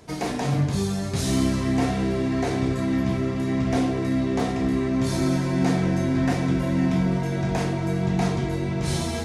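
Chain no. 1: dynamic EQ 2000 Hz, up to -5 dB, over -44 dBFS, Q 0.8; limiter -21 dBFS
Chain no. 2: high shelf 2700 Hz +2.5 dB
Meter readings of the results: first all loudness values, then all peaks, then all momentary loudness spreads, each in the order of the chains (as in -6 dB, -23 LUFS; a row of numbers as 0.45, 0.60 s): -29.0, -24.0 LUFS; -21.0, -10.0 dBFS; 1, 3 LU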